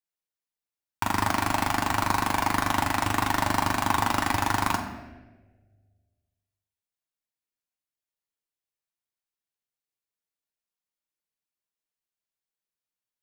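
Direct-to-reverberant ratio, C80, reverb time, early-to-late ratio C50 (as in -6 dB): 1.5 dB, 9.0 dB, 1.4 s, 7.5 dB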